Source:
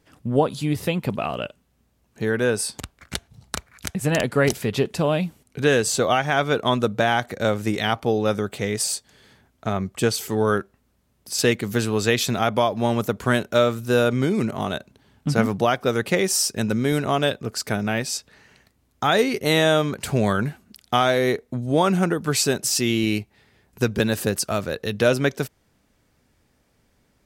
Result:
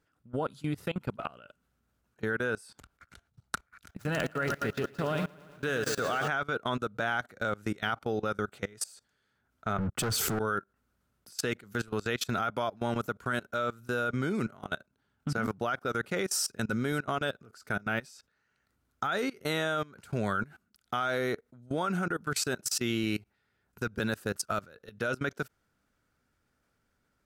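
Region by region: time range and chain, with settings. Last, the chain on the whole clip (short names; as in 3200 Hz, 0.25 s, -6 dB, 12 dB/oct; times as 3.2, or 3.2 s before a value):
3.89–6.28 median filter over 5 samples + high shelf 6000 Hz +5 dB + lo-fi delay 0.113 s, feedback 80%, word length 7-bit, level -9.5 dB
9.78–10.39 low shelf 360 Hz +10.5 dB + sample leveller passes 5 + three-band expander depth 70%
whole clip: bell 1400 Hz +13 dB 0.34 oct; level quantiser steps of 23 dB; gain -7 dB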